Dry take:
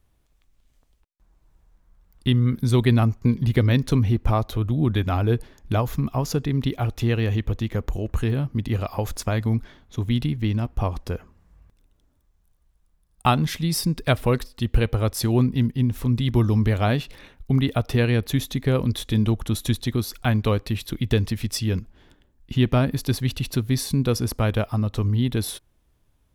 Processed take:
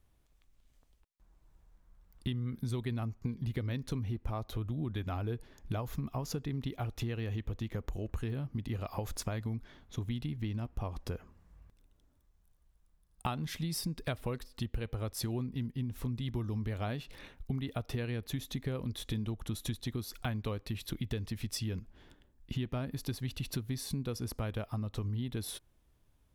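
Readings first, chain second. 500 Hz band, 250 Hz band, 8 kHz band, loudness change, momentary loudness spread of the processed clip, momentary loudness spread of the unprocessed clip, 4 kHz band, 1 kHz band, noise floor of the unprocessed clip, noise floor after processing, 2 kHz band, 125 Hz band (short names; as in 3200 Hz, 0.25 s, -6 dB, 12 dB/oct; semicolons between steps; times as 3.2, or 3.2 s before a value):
-15.5 dB, -15.0 dB, -11.0 dB, -14.5 dB, 4 LU, 7 LU, -12.5 dB, -15.0 dB, -65 dBFS, -69 dBFS, -15.0 dB, -14.5 dB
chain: compressor 5:1, threshold -29 dBFS, peak gain reduction 14.5 dB; gain -4.5 dB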